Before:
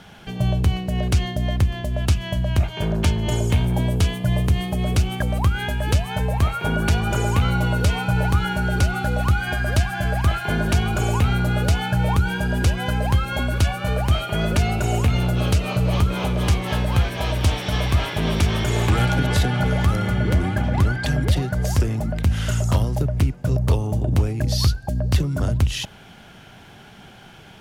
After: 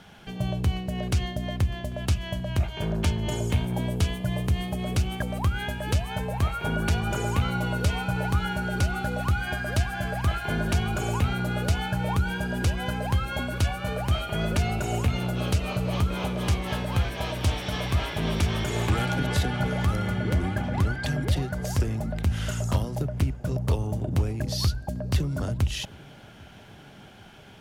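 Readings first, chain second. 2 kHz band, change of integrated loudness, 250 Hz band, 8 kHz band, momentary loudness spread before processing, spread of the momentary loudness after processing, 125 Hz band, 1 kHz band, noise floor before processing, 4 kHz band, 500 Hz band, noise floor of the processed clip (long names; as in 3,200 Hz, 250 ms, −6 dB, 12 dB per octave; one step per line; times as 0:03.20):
−5.0 dB, −6.0 dB, −5.0 dB, −5.0 dB, 3 LU, 3 LU, −6.5 dB, −5.0 dB, −45 dBFS, −5.0 dB, −5.0 dB, −47 dBFS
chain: mains-hum notches 60/120 Hz
tape delay 794 ms, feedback 89%, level −21.5 dB, low-pass 1,400 Hz
level −5 dB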